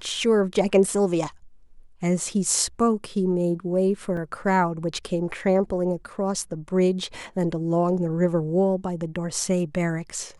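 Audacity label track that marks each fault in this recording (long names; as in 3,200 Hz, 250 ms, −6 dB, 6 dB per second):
4.170000	4.170000	drop-out 2.2 ms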